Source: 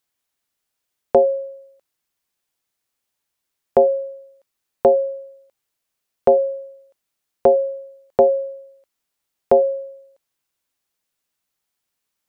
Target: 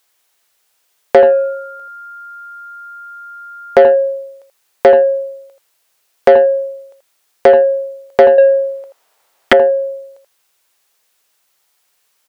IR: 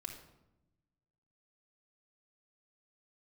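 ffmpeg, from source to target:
-filter_complex "[0:a]aecho=1:1:82:0.376,asettb=1/sr,asplit=3[link_01][link_02][link_03];[link_01]atrim=end=1.174[link_04];[link_02]atrim=start=1.17:end=3.9,asetpts=PTS-STARTPTS,afade=type=in:duration=0.004:curve=qsin,afade=type=out:start_time=2.726:duration=0.004:curve=qsin,aeval=exprs='val(0)+0.00501*sin(2*PI*1400*n/s)':channel_layout=same[link_05];[link_03]atrim=start=3.896[link_06];[link_04][link_05]acrossfade=duration=0.004:curve1=hsin:curve2=qsin[link_07];[link_07][link_06]acrossfade=duration=0.004:curve1=qsin:curve2=hsin,asettb=1/sr,asplit=3[link_08][link_09][link_10];[link_08]atrim=end=8.384[link_11];[link_09]atrim=start=8.38:end=9.53,asetpts=PTS-STARTPTS,afade=type=in:duration=0.004:curve=qsin,afade=type=out:start_time=1.146:duration=0.004:curve=qsin,equalizer=frequency=700:width=0.47:gain=11.5[link_12];[link_10]atrim=start=9.526[link_13];[link_11][link_12]acrossfade=duration=0.004:curve1=hsin:curve2=qsin[link_14];[link_14][link_13]acrossfade=duration=0.004:curve1=qsin:curve2=hsin,acompressor=threshold=-22dB:ratio=1.5,firequalizer=gain_entry='entry(280,0);entry(410,9);entry(720,11)':delay=0.05:min_phase=1,acontrast=48,volume=-1dB"

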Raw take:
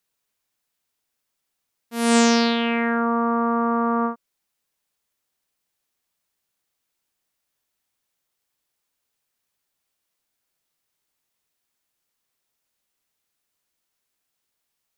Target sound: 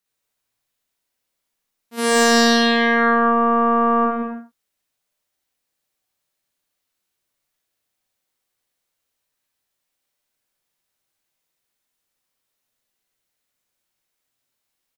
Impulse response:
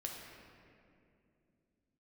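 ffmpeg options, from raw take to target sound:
-filter_complex "[0:a]asplit=3[link_01][link_02][link_03];[link_01]afade=type=out:start_time=1.97:duration=0.02[link_04];[link_02]acontrast=80,afade=type=in:start_time=1.97:duration=0.02,afade=type=out:start_time=4.04:duration=0.02[link_05];[link_03]afade=type=in:start_time=4.04:duration=0.02[link_06];[link_04][link_05][link_06]amix=inputs=3:normalize=0,aecho=1:1:58.31|174.9|221.6:0.794|0.562|0.355[link_07];[1:a]atrim=start_sample=2205,afade=type=out:start_time=0.19:duration=0.01,atrim=end_sample=8820[link_08];[link_07][link_08]afir=irnorm=-1:irlink=0"

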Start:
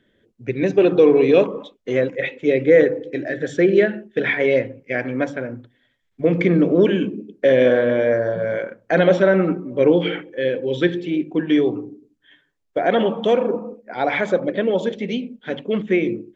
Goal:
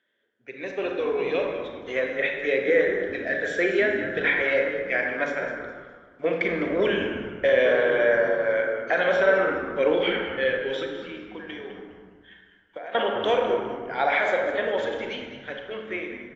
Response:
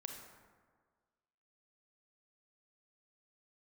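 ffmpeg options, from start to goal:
-filter_complex "[0:a]highpass=910,aemphasis=mode=reproduction:type=bsi,asettb=1/sr,asplit=3[link_01][link_02][link_03];[link_01]atrim=end=10.824[link_04];[link_02]atrim=start=10.82:end=12.95,asetpts=PTS-STARTPTS,afade=type=in:duration=0.004:curve=qsin,afade=type=out:start_time=2.126:duration=0.004:curve=qsin,acompressor=threshold=-38dB:ratio=16[link_05];[link_03]atrim=start=12.946[link_06];[link_04][link_05]acrossfade=duration=0.004:curve1=hsin:curve2=qsin[link_07];[link_07][link_06]acrossfade=duration=0.004:curve1=qsin:curve2=hsin,alimiter=limit=-15dB:level=0:latency=1:release=410,dynaudnorm=framelen=250:gausssize=13:maxgain=7.5dB,asplit=4[link_08][link_09][link_10][link_11];[link_09]adelay=205,afreqshift=-110,volume=-11.5dB[link_12];[link_10]adelay=410,afreqshift=-220,volume=-21.1dB[link_13];[link_11]adelay=615,afreqshift=-330,volume=-30.8dB[link_14];[link_08][link_12][link_13][link_14]amix=inputs=4:normalize=0[link_15];[1:a]atrim=start_sample=2205[link_16];[link_15][link_16]afir=irnorm=-1:irlink=0" -ar 22050 -c:a aac -b:a 48k

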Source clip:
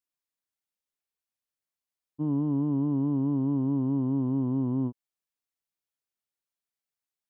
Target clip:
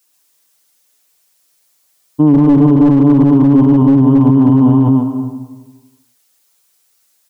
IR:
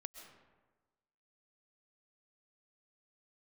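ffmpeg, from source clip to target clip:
-filter_complex "[0:a]bass=frequency=250:gain=-6,treble=frequency=4000:gain=8,aecho=1:1:6.7:0.86,asplit=2[link_01][link_02];[1:a]atrim=start_sample=2205,adelay=132[link_03];[link_02][link_03]afir=irnorm=-1:irlink=0,volume=0.5dB[link_04];[link_01][link_04]amix=inputs=2:normalize=0,aeval=exprs='clip(val(0),-1,0.0794)':channel_layout=same,alimiter=level_in=23.5dB:limit=-1dB:release=50:level=0:latency=1,volume=-1dB"

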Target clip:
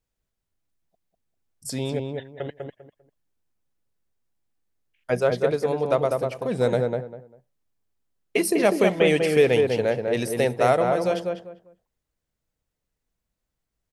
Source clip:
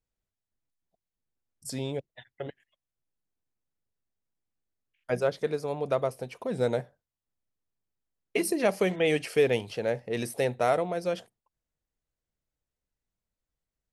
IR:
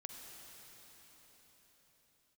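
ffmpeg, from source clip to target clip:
-filter_complex "[0:a]asplit=2[link_01][link_02];[link_02]adelay=198,lowpass=frequency=1500:poles=1,volume=-3dB,asplit=2[link_03][link_04];[link_04]adelay=198,lowpass=frequency=1500:poles=1,volume=0.24,asplit=2[link_05][link_06];[link_06]adelay=198,lowpass=frequency=1500:poles=1,volume=0.24[link_07];[link_01][link_03][link_05][link_07]amix=inputs=4:normalize=0,volume=5dB"

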